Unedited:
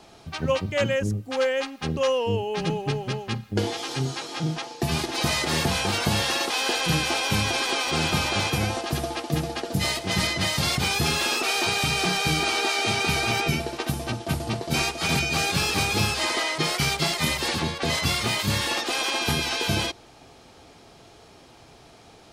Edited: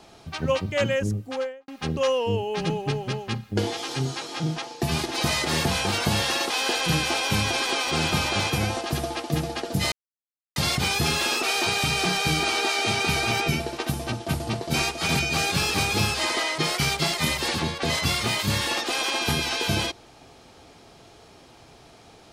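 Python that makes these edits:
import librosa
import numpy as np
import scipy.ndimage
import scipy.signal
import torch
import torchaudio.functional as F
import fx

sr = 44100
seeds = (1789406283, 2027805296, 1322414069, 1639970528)

y = fx.studio_fade_out(x, sr, start_s=1.21, length_s=0.47)
y = fx.edit(y, sr, fx.silence(start_s=9.92, length_s=0.64), tone=tone)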